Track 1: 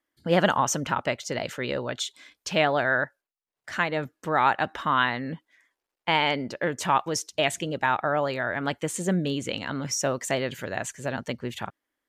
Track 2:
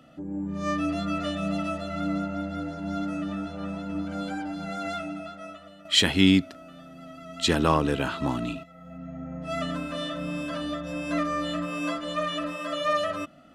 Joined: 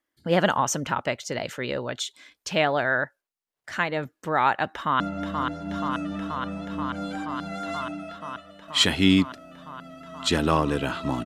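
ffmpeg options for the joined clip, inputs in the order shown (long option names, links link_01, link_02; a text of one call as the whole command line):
ffmpeg -i cue0.wav -i cue1.wav -filter_complex "[0:a]apad=whole_dur=11.25,atrim=end=11.25,atrim=end=5.002[link_01];[1:a]atrim=start=2.168:end=8.42[link_02];[link_01][link_02]acrossfade=duration=0.004:curve1=hsin:curve2=hsin,asplit=2[link_03][link_04];[link_04]afade=type=in:start_time=4.73:duration=0.01,afade=type=out:start_time=5:duration=0.01,aecho=0:1:480|960|1440|1920|2400|2880|3360|3840|4320|4800|5280|5760:0.562341|0.47799|0.406292|0.345348|0.293546|0.249514|0.212087|0.180274|0.153233|0.130248|0.110711|0.094104[link_05];[link_03][link_05]amix=inputs=2:normalize=0" out.wav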